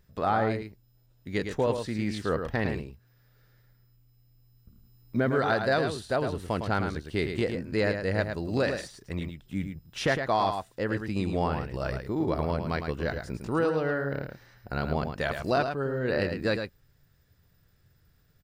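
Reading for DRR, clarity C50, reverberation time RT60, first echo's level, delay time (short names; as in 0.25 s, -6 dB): none, none, none, -7.0 dB, 0.108 s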